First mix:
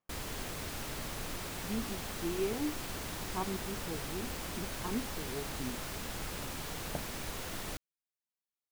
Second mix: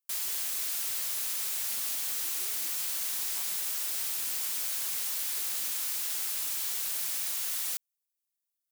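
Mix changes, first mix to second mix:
background +11.0 dB; master: add differentiator

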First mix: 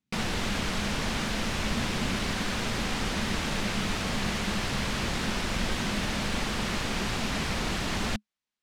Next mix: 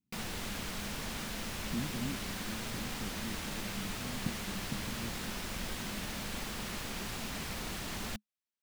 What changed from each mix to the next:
background -10.5 dB; master: remove air absorption 57 m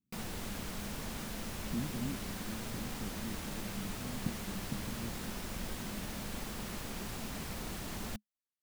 master: add bell 2900 Hz -5.5 dB 2.9 oct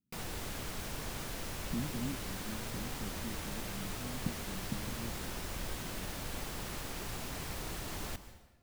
background: add bell 210 Hz -10.5 dB 0.32 oct; reverb: on, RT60 1.1 s

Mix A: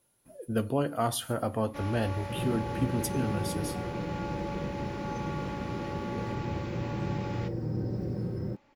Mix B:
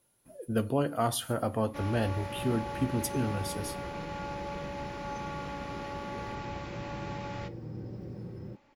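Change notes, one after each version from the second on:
second sound -8.5 dB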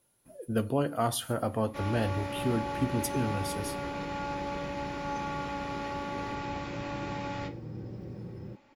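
first sound: send +9.5 dB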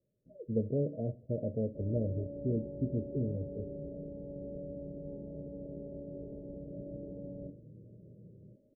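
second sound -11.0 dB; master: add rippled Chebyshev low-pass 630 Hz, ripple 6 dB

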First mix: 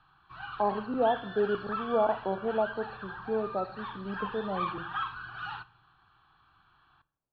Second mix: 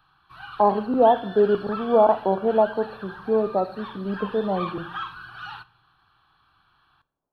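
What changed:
speech +9.0 dB; master: remove air absorption 180 m

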